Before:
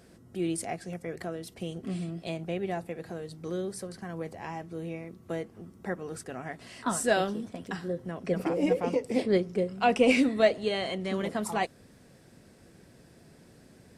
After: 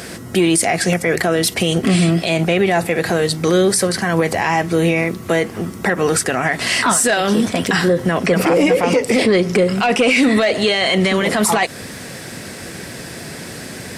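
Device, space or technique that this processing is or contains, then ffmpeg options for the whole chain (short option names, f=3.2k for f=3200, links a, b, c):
mastering chain: -af "highpass=60,equalizer=f=2k:t=o:w=0.52:g=3,acompressor=threshold=-29dB:ratio=2,asoftclip=type=tanh:threshold=-20dB,tiltshelf=f=850:g=-4.5,asoftclip=type=hard:threshold=-19.5dB,alimiter=level_in=31.5dB:limit=-1dB:release=50:level=0:latency=1,volume=-5.5dB"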